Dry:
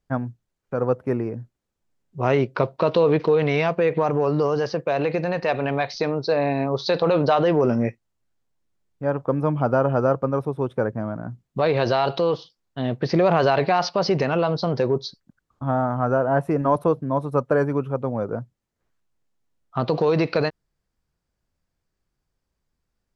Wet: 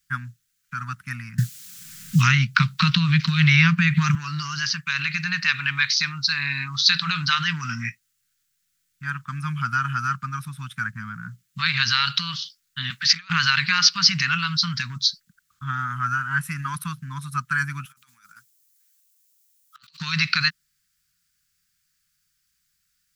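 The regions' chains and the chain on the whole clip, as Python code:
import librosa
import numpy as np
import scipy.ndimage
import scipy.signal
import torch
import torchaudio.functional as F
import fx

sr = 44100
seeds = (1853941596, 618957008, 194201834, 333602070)

y = fx.chain(x, sr, fx.peak_eq(hz=160.0, db=12.0, octaves=1.6),
    fx.band_squash(depth_pct=100), at=(1.38, 4.15))
y = fx.chain(y, sr, fx.highpass(hz=780.0, slope=6),
    fx.over_compress(threshold_db=-30.0, ratio=-0.5), at=(12.9, 13.3))
y = fx.chain(y, sr, fx.differentiator(),
    fx.over_compress(threshold_db=-52.0, ratio=-0.5), at=(17.85, 20.0))
y = scipy.signal.sosfilt(scipy.signal.ellip(3, 1.0, 50, [180.0, 1400.0], 'bandstop', fs=sr, output='sos'), y)
y = fx.tilt_eq(y, sr, slope=3.5)
y = y * librosa.db_to_amplitude(7.0)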